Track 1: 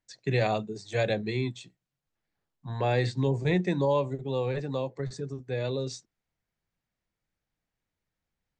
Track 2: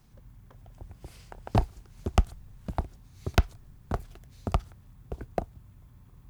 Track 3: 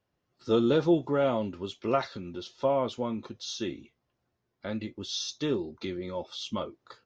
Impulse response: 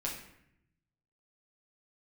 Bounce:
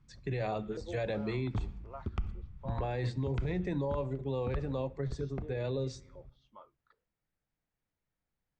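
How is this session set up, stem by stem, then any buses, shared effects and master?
-3.0 dB, 0.00 s, send -17.5 dB, high shelf 3600 Hz -10 dB; limiter -22.5 dBFS, peak gain reduction 7.5 dB
-5.5 dB, 0.00 s, send -14 dB, LPF 2300 Hz 12 dB/oct; bell 710 Hz -13 dB 1.1 oct; comb 0.9 ms, depth 31%
-14.0 dB, 0.00 s, no send, LFO band-pass saw up 1.3 Hz 410–1800 Hz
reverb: on, RT60 0.75 s, pre-delay 7 ms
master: limiter -25.5 dBFS, peak gain reduction 12 dB

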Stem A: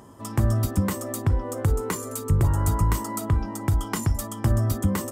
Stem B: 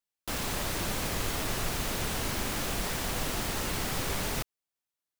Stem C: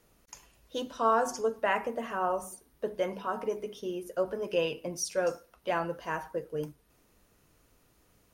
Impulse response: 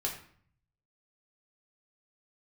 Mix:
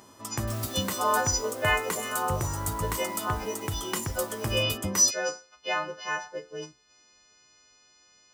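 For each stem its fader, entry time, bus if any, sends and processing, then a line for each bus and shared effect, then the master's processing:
-3.0 dB, 0.00 s, no send, high shelf 4800 Hz -6 dB
-12.0 dB, 0.20 s, no send, auto duck -9 dB, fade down 1.45 s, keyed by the third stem
0.0 dB, 0.00 s, no send, frequency quantiser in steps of 3 st; steep low-pass 6500 Hz 48 dB/oct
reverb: off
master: tilt +2.5 dB/oct

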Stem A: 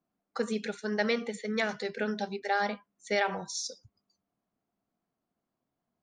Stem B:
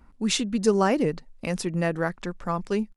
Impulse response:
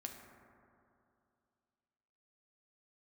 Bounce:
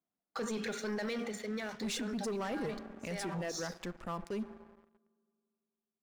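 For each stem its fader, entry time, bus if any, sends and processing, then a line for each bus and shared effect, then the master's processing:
0.88 s -5.5 dB -> 1.6 s -16 dB, 0.00 s, send -6.5 dB, limiter -25.5 dBFS, peak gain reduction 10 dB
-16.0 dB, 1.60 s, send -10 dB, reverb removal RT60 0.74 s; crossover distortion -52 dBFS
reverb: on, RT60 2.6 s, pre-delay 4 ms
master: low shelf 170 Hz -3.5 dB; sample leveller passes 3; limiter -31.5 dBFS, peak gain reduction 8.5 dB

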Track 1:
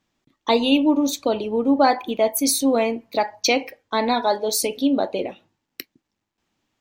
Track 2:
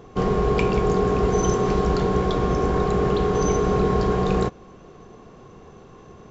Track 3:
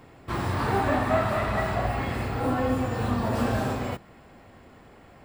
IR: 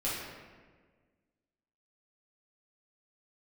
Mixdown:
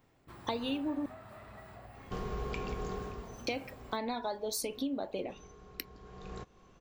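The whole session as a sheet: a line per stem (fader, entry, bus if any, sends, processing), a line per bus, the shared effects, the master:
-5.5 dB, 0.00 s, muted 1.06–3.47, bus A, no send, dry
-14.5 dB, 1.95 s, bus A, no send, tilt shelf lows -5 dB, about 870 Hz; auto duck -19 dB, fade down 0.55 s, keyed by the first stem
-18.5 dB, 0.00 s, no bus, no send, high shelf 12000 Hz +12 dB; compressor 3:1, threshold -31 dBFS, peak gain reduction 10 dB
bus A: 0.0 dB, low shelf 100 Hz +10.5 dB; compressor 6:1, threshold -33 dBFS, peak gain reduction 15 dB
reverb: off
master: dry

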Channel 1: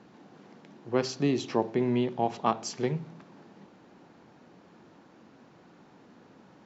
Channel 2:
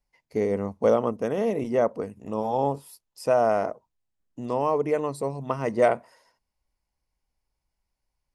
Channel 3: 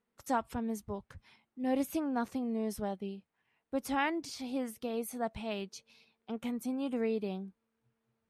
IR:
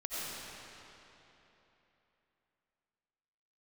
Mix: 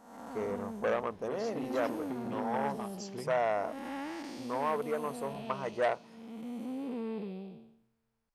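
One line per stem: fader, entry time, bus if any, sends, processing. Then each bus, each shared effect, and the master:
-8.0 dB, 0.35 s, no send, compressor, threshold -29 dBFS, peak gain reduction 10 dB
-8.5 dB, 0.00 s, no send, graphic EQ 125/250/1000 Hz -4/-5/+5 dB
0.0 dB, 0.00 s, no send, time blur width 0.422 s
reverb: off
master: core saturation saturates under 1300 Hz

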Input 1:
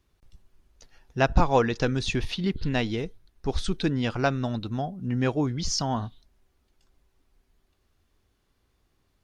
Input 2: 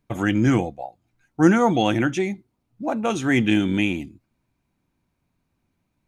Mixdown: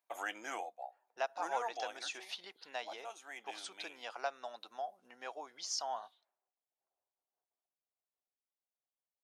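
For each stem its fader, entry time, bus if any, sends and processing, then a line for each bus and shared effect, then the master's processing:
-1.5 dB, 0.00 s, no send, compressor 2:1, threshold -29 dBFS, peak gain reduction 9 dB; expander -58 dBFS; low-pass opened by the level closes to 660 Hz, open at -30.5 dBFS
-3.5 dB, 0.00 s, no send, auto duck -13 dB, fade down 2.00 s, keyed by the first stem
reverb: off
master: ladder high-pass 600 Hz, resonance 45%; high shelf 7100 Hz +10.5 dB

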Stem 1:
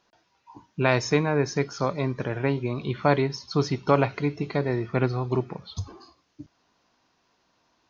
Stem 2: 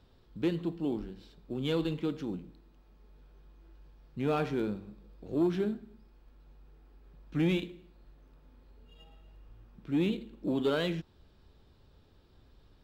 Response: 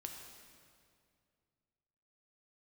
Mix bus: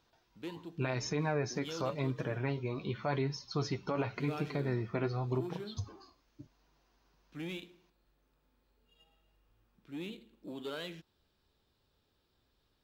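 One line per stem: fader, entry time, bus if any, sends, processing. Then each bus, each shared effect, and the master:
-3.5 dB, 0.00 s, no send, flange 0.9 Hz, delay 6.1 ms, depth 5 ms, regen +34%
-10.0 dB, 0.00 s, no send, tilt +2 dB/oct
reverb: off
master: limiter -23.5 dBFS, peak gain reduction 11 dB

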